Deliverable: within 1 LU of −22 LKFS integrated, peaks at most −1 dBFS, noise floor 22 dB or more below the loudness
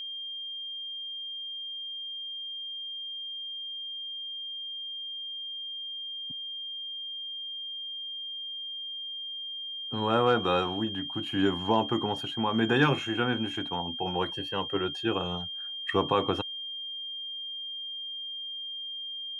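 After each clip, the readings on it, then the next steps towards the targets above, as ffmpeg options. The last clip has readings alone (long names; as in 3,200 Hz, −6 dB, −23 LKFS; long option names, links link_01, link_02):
interfering tone 3,200 Hz; level of the tone −35 dBFS; integrated loudness −31.5 LKFS; sample peak −9.5 dBFS; target loudness −22.0 LKFS
→ -af "bandreject=frequency=3200:width=30"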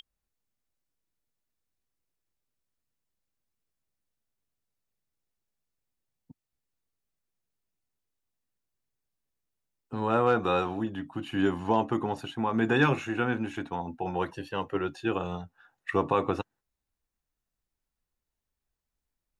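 interfering tone none found; integrated loudness −29.0 LKFS; sample peak −10.0 dBFS; target loudness −22.0 LKFS
→ -af "volume=7dB"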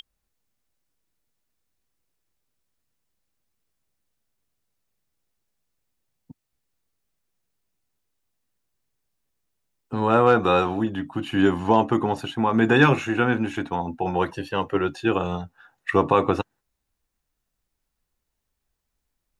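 integrated loudness −22.0 LKFS; sample peak −3.0 dBFS; background noise floor −80 dBFS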